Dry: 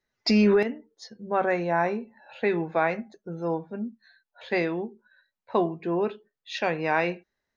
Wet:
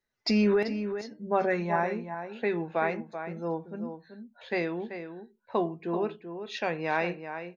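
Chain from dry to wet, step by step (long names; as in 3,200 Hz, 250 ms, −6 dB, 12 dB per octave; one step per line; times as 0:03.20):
0:01.17–0:01.76: comb filter 4.9 ms, depth 77%
slap from a distant wall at 66 metres, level −9 dB
level −4 dB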